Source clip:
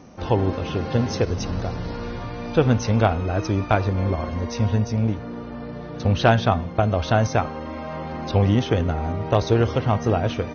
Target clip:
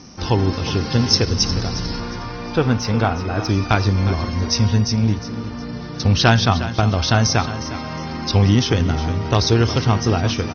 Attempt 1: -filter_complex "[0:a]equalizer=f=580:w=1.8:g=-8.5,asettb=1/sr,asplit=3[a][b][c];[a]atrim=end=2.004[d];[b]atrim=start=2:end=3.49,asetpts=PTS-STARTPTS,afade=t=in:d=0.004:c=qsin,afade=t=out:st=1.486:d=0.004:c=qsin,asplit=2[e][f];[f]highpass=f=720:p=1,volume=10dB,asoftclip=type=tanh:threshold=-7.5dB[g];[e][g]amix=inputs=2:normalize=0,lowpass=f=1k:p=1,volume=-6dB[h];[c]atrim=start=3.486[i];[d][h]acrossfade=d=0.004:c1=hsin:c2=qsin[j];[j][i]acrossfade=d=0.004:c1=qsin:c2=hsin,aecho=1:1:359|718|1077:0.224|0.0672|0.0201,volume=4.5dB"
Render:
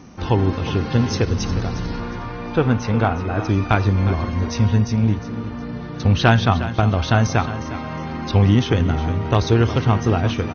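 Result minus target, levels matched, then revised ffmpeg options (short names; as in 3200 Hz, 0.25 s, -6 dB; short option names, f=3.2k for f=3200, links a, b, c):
4000 Hz band -7.5 dB
-filter_complex "[0:a]lowpass=f=5.3k:t=q:w=6.8,equalizer=f=580:w=1.8:g=-8.5,asettb=1/sr,asplit=3[a][b][c];[a]atrim=end=2.004[d];[b]atrim=start=2:end=3.49,asetpts=PTS-STARTPTS,afade=t=in:d=0.004:c=qsin,afade=t=out:st=1.486:d=0.004:c=qsin,asplit=2[e][f];[f]highpass=f=720:p=1,volume=10dB,asoftclip=type=tanh:threshold=-7.5dB[g];[e][g]amix=inputs=2:normalize=0,lowpass=f=1k:p=1,volume=-6dB[h];[c]atrim=start=3.486[i];[d][h]acrossfade=d=0.004:c1=hsin:c2=qsin[j];[j][i]acrossfade=d=0.004:c1=qsin:c2=hsin,aecho=1:1:359|718|1077:0.224|0.0672|0.0201,volume=4.5dB"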